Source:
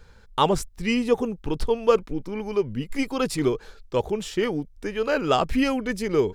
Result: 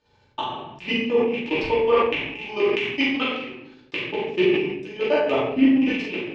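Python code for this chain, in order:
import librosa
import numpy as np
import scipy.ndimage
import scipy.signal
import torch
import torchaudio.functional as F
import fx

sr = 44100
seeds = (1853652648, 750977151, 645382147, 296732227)

y = fx.rattle_buzz(x, sr, strikes_db=-32.0, level_db=-15.0)
y = fx.env_lowpass_down(y, sr, base_hz=1900.0, full_db=-16.5)
y = fx.peak_eq(y, sr, hz=2100.0, db=9.5, octaves=2.6, at=(1.75, 3.97))
y = fx.transient(y, sr, attack_db=4, sustain_db=-7)
y = fx.level_steps(y, sr, step_db=20)
y = fx.transient(y, sr, attack_db=-5, sustain_db=-9)
y = fx.gate_flip(y, sr, shuts_db=-14.0, range_db=-31)
y = fx.cabinet(y, sr, low_hz=130.0, low_slope=12, high_hz=6600.0, hz=(370.0, 540.0, 810.0, 1400.0, 2900.0), db=(4, -3, 6, -9, 7))
y = fx.doubler(y, sr, ms=42.0, db=-5.5)
y = fx.room_shoebox(y, sr, seeds[0], volume_m3=140.0, walls='mixed', distance_m=2.6)
y = fx.sustainer(y, sr, db_per_s=50.0)
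y = y * librosa.db_to_amplitude(-3.0)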